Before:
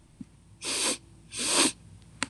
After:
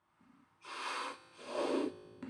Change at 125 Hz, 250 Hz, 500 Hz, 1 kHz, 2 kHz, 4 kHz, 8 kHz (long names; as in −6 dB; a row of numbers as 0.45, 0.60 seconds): −15.5, −5.5, −1.0, −5.0, −11.5, −18.5, −28.0 decibels